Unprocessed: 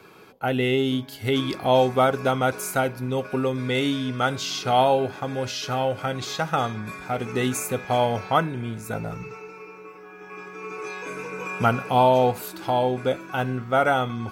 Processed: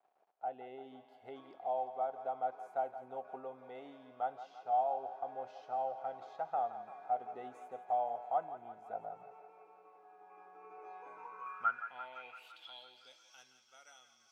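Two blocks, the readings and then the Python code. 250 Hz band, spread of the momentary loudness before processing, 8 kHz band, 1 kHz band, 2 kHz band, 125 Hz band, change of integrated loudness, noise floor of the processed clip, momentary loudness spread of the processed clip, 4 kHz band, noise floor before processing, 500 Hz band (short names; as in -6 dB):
-32.0 dB, 15 LU, under -30 dB, -12.5 dB, -21.5 dB, under -40 dB, -15.5 dB, -67 dBFS, 20 LU, under -25 dB, -44 dBFS, -19.0 dB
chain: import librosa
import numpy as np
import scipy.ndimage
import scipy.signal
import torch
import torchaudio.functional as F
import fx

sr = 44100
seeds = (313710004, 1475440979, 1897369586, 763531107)

p1 = fx.peak_eq(x, sr, hz=86.0, db=-6.0, octaves=0.77)
p2 = fx.rider(p1, sr, range_db=4, speed_s=0.5)
p3 = np.where(np.abs(p2) >= 10.0 ** (-46.0 / 20.0), p2, 0.0)
p4 = fx.filter_sweep_bandpass(p3, sr, from_hz=730.0, to_hz=5700.0, start_s=10.97, end_s=13.23, q=7.8)
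p5 = p4 + fx.echo_thinned(p4, sr, ms=170, feedback_pct=70, hz=480.0, wet_db=-11.5, dry=0)
y = p5 * 10.0 ** (-6.0 / 20.0)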